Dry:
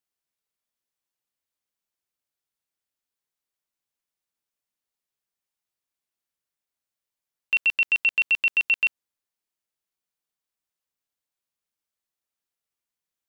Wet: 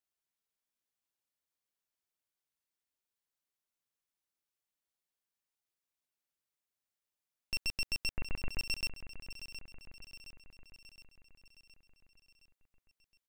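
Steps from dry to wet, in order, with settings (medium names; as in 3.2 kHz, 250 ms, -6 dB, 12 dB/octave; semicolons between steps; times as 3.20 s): one-sided wavefolder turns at -26 dBFS; 8.10–8.59 s: steep low-pass 2.2 kHz 48 dB/octave; peak limiter -21 dBFS, peak gain reduction 5.5 dB; feedback delay 717 ms, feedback 56%, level -11.5 dB; trim -4.5 dB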